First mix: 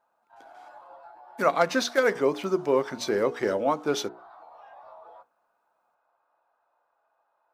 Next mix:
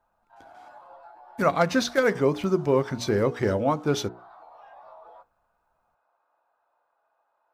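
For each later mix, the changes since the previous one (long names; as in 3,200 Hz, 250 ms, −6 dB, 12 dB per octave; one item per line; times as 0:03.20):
speech: remove high-pass filter 300 Hz 12 dB per octave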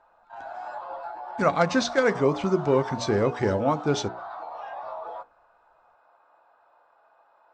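background +12.0 dB
master: add Butterworth low-pass 8,300 Hz 72 dB per octave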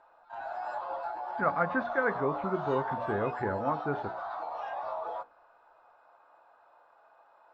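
speech: add transistor ladder low-pass 1,800 Hz, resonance 50%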